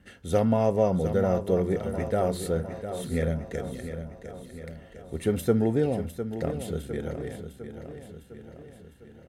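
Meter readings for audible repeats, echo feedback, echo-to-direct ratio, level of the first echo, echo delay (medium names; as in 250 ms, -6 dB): 5, 56%, -8.5 dB, -10.0 dB, 705 ms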